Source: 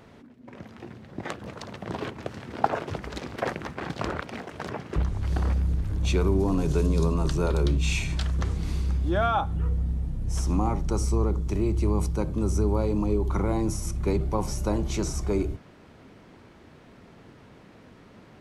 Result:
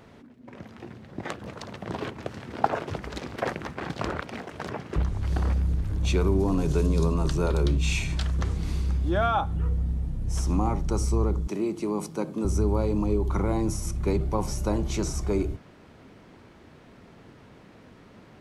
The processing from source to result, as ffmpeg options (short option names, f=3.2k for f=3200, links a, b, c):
-filter_complex "[0:a]asettb=1/sr,asplit=3[a][b][c];[a]atrim=end=11.474[d];[b]atrim=start=11.47:end=12.45,asetpts=PTS-STARTPTS,afade=t=in:d=0.004:c=qsin,afade=t=out:st=0.976:d=0.004:c=qsin,highpass=f=180:w=0.5412,highpass=f=180:w=1.3066[e];[c]atrim=start=12.446[f];[d][e]acrossfade=d=0.004:c1=hsin:c2=qsin[g];[g][f]acrossfade=d=0.004:c1=qsin:c2=hsin"